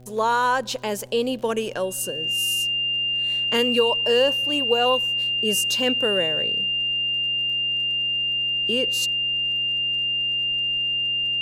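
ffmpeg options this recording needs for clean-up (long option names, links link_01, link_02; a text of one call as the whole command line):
ffmpeg -i in.wav -af "adeclick=threshold=4,bandreject=frequency=125.3:width_type=h:width=4,bandreject=frequency=250.6:width_type=h:width=4,bandreject=frequency=375.9:width_type=h:width=4,bandreject=frequency=501.2:width_type=h:width=4,bandreject=frequency=626.5:width_type=h:width=4,bandreject=frequency=751.8:width_type=h:width=4,bandreject=frequency=2800:width=30,agate=range=-21dB:threshold=-19dB" out.wav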